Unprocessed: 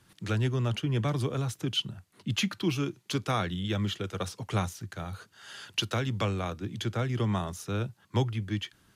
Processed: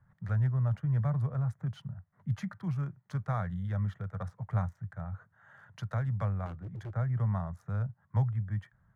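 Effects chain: local Wiener filter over 9 samples; FFT filter 160 Hz 0 dB, 330 Hz -25 dB, 600 Hz -6 dB, 1.9 kHz -8 dB, 2.7 kHz -29 dB, 5 kHz -21 dB; 6.46–6.91 s: hard clipper -38 dBFS, distortion -22 dB; trim +1 dB

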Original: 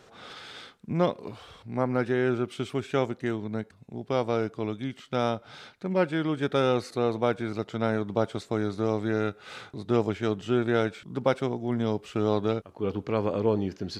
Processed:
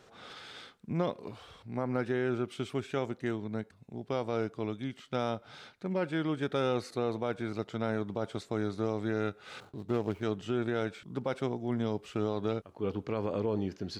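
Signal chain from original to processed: 9.60–10.23 s: median filter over 25 samples; peak limiter -16.5 dBFS, peak gain reduction 6.5 dB; trim -4 dB

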